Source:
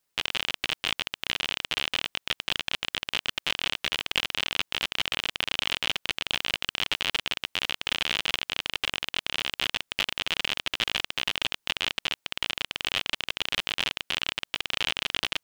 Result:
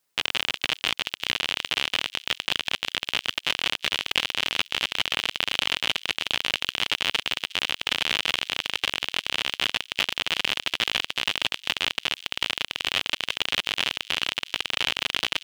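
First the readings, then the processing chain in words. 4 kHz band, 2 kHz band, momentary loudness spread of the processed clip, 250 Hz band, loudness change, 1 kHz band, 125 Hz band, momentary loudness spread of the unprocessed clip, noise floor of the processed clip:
+3.0 dB, +3.0 dB, 3 LU, +2.0 dB, +3.0 dB, +3.0 dB, +0.5 dB, 3 LU, -65 dBFS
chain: low shelf 81 Hz -8 dB; thin delay 0.36 s, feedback 34%, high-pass 3600 Hz, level -14 dB; gain +3 dB

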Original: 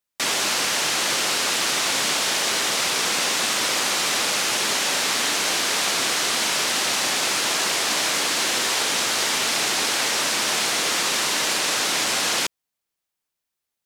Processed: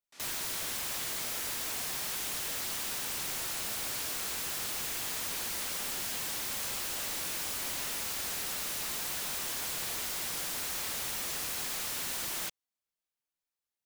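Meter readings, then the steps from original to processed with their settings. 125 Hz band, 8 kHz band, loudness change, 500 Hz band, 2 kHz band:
-8.0 dB, -13.0 dB, -13.0 dB, -17.0 dB, -17.5 dB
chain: pre-echo 74 ms -22 dB; chorus voices 4, 0.65 Hz, delay 26 ms, depth 4.2 ms; wrapped overs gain 24 dB; gain -7 dB

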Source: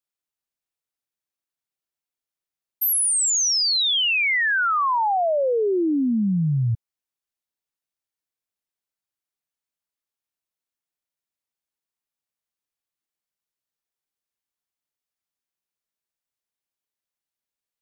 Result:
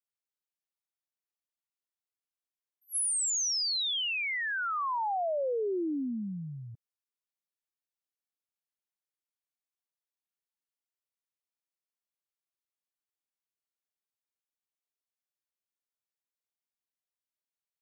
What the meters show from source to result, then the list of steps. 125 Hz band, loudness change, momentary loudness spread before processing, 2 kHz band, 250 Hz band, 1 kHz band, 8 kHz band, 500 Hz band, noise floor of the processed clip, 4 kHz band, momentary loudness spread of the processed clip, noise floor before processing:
-19.5 dB, -10.0 dB, 5 LU, -11.5 dB, -12.5 dB, -10.5 dB, -9.5 dB, -10.0 dB, under -85 dBFS, -10.5 dB, 12 LU, under -85 dBFS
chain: HPF 260 Hz 12 dB/oct; dynamic EQ 1900 Hz, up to -3 dB, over -34 dBFS, Q 0.78; attack slew limiter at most 440 dB/s; gain -9 dB

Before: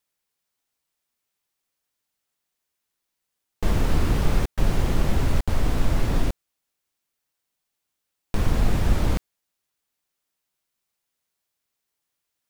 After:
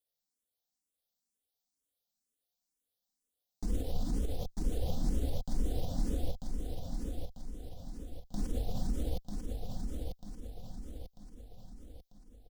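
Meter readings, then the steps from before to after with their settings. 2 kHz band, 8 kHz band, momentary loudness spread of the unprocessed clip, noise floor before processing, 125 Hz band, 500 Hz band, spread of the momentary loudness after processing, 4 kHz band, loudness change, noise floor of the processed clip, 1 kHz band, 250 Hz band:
-24.5 dB, -10.0 dB, 7 LU, -81 dBFS, -12.5 dB, -10.5 dB, 17 LU, -12.5 dB, -14.0 dB, under -85 dBFS, -16.0 dB, -10.0 dB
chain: band shelf 1600 Hz -15.5 dB; comb 4 ms, depth 49%; limiter -16.5 dBFS, peak gain reduction 10.5 dB; on a send: feedback echo 0.943 s, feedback 48%, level -4.5 dB; on the sum: endless phaser +2.1 Hz; gain -5.5 dB

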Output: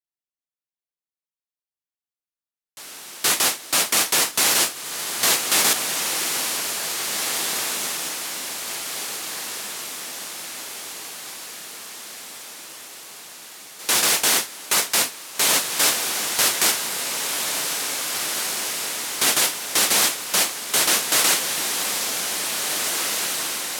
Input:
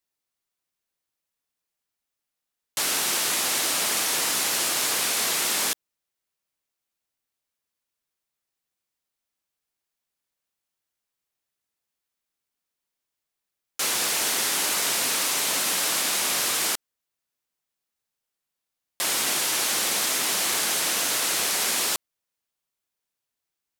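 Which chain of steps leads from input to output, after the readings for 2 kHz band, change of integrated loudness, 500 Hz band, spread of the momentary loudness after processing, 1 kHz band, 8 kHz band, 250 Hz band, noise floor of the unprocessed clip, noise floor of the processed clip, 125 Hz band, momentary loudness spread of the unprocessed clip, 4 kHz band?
+4.5 dB, +2.0 dB, +5.0 dB, 18 LU, +4.5 dB, +4.5 dB, +4.5 dB, -85 dBFS, under -85 dBFS, +5.0 dB, 4 LU, +4.5 dB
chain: gate with hold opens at -13 dBFS; on a send: diffused feedback echo 1.978 s, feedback 57%, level -4 dB; on the sum: gain +7 dB

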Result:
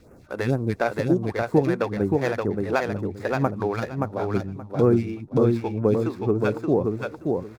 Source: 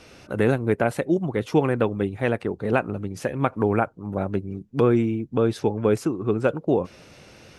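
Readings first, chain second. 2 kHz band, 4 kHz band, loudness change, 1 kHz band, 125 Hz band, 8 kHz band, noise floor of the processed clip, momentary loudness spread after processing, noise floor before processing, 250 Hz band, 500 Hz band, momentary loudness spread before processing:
-0.5 dB, -1.0 dB, -0.5 dB, -0.5 dB, +1.0 dB, n/a, -48 dBFS, 7 LU, -51 dBFS, 0.0 dB, 0.0 dB, 8 LU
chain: median filter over 15 samples; notch 3000 Hz, Q 10; phaser stages 2, 2.1 Hz, lowest notch 120–3700 Hz; on a send: feedback echo 0.575 s, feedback 19%, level -3.5 dB

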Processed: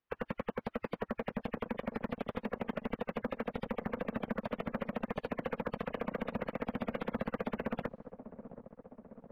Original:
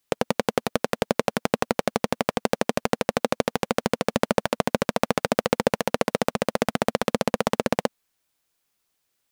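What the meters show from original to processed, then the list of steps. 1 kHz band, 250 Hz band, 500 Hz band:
-15.0 dB, -10.5 dB, -14.5 dB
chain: block floating point 5-bit; in parallel at +1.5 dB: limiter -11 dBFS, peak gain reduction 9.5 dB; on the sum: spectral gate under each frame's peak -20 dB strong; gate -49 dBFS, range -12 dB; careless resampling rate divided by 3×, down filtered, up zero stuff; soft clip -19.5 dBFS, distortion 0 dB; LPF 1700 Hz 12 dB/oct; on a send: dark delay 0.725 s, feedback 64%, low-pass 790 Hz, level -12.5 dB

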